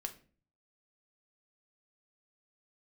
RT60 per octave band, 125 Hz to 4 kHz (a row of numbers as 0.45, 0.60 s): 0.70, 0.60, 0.45, 0.35, 0.35, 0.30 s